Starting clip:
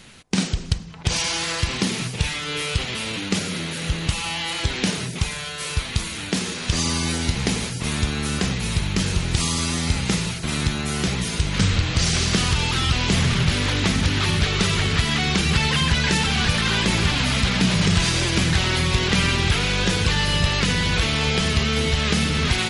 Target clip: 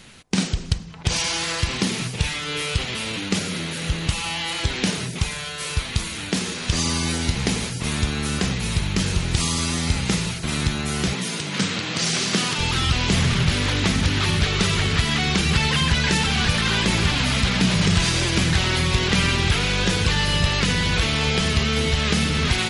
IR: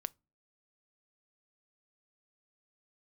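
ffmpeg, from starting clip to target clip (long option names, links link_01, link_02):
-filter_complex "[0:a]asettb=1/sr,asplit=3[link_01][link_02][link_03];[link_01]atrim=end=11.134[link_04];[link_02]atrim=start=11.13:end=12.59,asetpts=PTS-STARTPTS,afade=type=in:duration=0.004:curve=qsin,afade=type=out:start_time=1.456:duration=0.004:curve=qsin,highpass=frequency=160:width=0.5412,highpass=frequency=160:width=1.3066[link_05];[link_03]atrim=start=12.586[link_06];[link_04][link_05]acrossfade=duration=0.004:curve1=hsin:curve2=qsin[link_07];[link_07][link_06]acrossfade=duration=0.004:curve1=qsin:curve2=hsin"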